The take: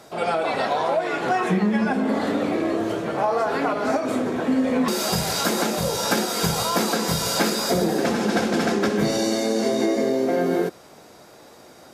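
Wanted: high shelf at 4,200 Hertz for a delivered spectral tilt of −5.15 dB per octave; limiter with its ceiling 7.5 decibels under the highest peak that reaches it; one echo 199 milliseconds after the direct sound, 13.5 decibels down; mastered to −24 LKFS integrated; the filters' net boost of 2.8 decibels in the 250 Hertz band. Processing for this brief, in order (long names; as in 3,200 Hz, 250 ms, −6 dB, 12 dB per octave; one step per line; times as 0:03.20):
parametric band 250 Hz +3.5 dB
high-shelf EQ 4,200 Hz −7.5 dB
brickwall limiter −16 dBFS
single-tap delay 199 ms −13.5 dB
level +0.5 dB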